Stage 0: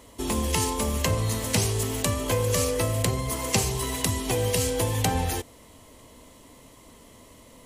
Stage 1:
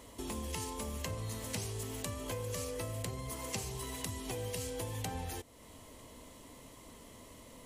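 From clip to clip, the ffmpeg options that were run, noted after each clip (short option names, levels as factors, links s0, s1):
-af "acompressor=threshold=0.00708:ratio=2,volume=0.708"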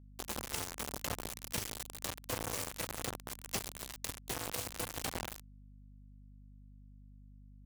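-af "asoftclip=type=tanh:threshold=0.02,acrusher=bits=5:mix=0:aa=0.000001,aeval=exprs='val(0)+0.00126*(sin(2*PI*50*n/s)+sin(2*PI*2*50*n/s)/2+sin(2*PI*3*50*n/s)/3+sin(2*PI*4*50*n/s)/4+sin(2*PI*5*50*n/s)/5)':c=same,volume=1.5"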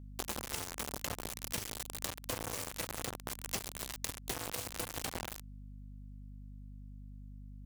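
-af "acompressor=threshold=0.01:ratio=6,volume=2.24"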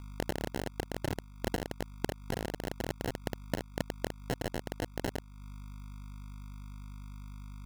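-af "acrusher=samples=37:mix=1:aa=0.000001,volume=1.58"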